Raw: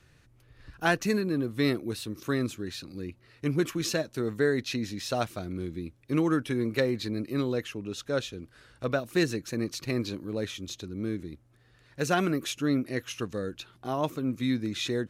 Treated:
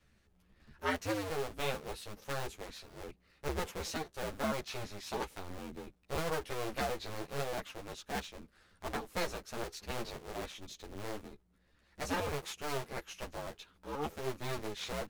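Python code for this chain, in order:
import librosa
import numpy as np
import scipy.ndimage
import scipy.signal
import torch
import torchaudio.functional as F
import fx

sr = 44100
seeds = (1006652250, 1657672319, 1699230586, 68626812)

y = fx.cycle_switch(x, sr, every=2, mode='inverted')
y = fx.ensemble(y, sr)
y = F.gain(torch.from_numpy(y), -6.5).numpy()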